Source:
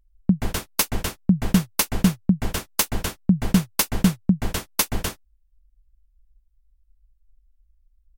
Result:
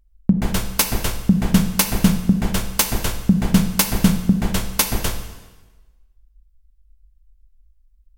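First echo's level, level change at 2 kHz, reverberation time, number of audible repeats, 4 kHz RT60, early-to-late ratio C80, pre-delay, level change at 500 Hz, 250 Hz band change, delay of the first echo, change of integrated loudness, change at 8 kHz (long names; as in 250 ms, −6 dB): no echo audible, +3.5 dB, 1.2 s, no echo audible, 1.1 s, 11.0 dB, 6 ms, +3.5 dB, +3.5 dB, no echo audible, +3.5 dB, +3.5 dB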